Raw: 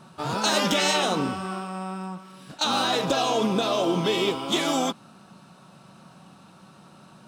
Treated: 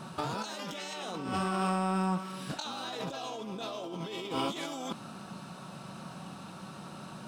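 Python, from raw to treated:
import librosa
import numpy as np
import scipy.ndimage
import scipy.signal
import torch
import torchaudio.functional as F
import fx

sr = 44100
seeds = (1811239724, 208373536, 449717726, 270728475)

y = fx.over_compress(x, sr, threshold_db=-34.0, ratio=-1.0)
y = y * librosa.db_to_amplitude(-2.0)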